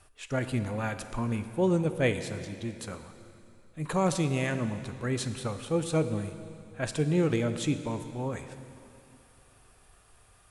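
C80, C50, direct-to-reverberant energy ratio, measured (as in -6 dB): 11.0 dB, 10.0 dB, 9.0 dB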